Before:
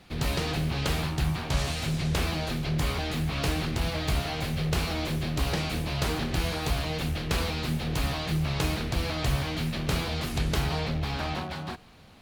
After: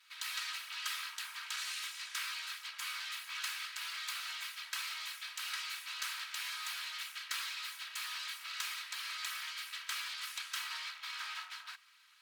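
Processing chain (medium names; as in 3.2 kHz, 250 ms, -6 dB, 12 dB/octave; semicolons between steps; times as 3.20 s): comb filter that takes the minimum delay 3.1 ms; steep high-pass 1.2 kHz 36 dB/octave; hard clipper -22 dBFS, distortion -35 dB; trim -4.5 dB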